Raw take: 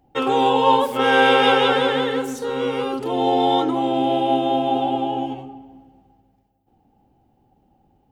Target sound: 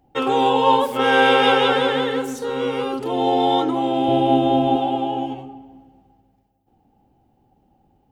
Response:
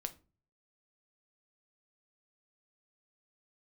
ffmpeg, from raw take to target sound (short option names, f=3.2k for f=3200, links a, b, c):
-filter_complex "[0:a]asettb=1/sr,asplit=3[a][b][c];[a]atrim=end=4.084[d];[b]atrim=start=4.08:end=4.76,asetpts=PTS-STARTPTS,afade=t=in:d=0.004:c=qsin,afade=t=out:st=0.676:d=0.004:c=qsin,lowshelf=f=240:g=11.5[e];[c]atrim=start=4.756[f];[d][e]acrossfade=d=0.004:c1=hsin:c2=qsin[g];[g][f]acrossfade=d=0.004:c1=qsin:c2=hsin"